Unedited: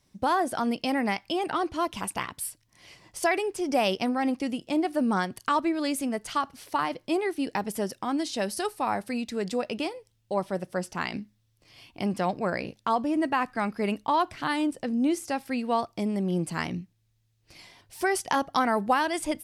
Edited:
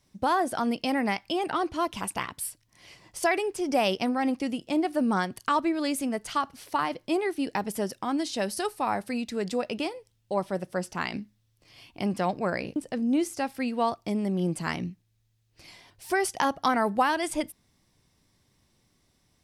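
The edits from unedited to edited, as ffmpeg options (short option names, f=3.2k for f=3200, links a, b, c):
-filter_complex "[0:a]asplit=2[a][b];[a]atrim=end=12.762[c];[b]atrim=start=14.668[d];[c][d]acrossfade=d=0.004:c1=hsin:c2=hsin"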